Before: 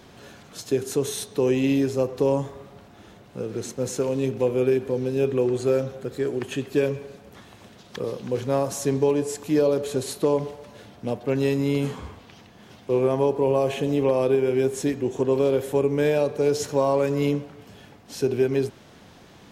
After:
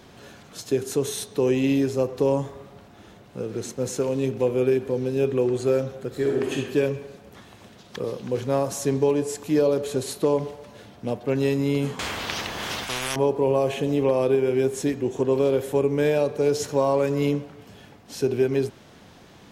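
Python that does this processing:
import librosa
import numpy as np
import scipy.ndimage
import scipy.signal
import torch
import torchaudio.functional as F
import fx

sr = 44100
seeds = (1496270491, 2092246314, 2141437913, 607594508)

y = fx.reverb_throw(x, sr, start_s=6.08, length_s=0.47, rt60_s=1.2, drr_db=-0.5)
y = fx.spectral_comp(y, sr, ratio=10.0, at=(11.99, 13.16))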